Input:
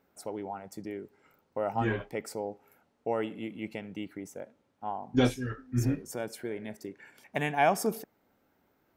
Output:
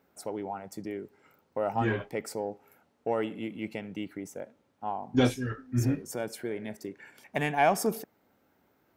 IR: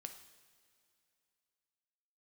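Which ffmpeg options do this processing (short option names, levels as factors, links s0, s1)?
-filter_complex "[0:a]highpass=51,asplit=2[s0][s1];[s1]asoftclip=type=tanh:threshold=0.0398,volume=0.282[s2];[s0][s2]amix=inputs=2:normalize=0"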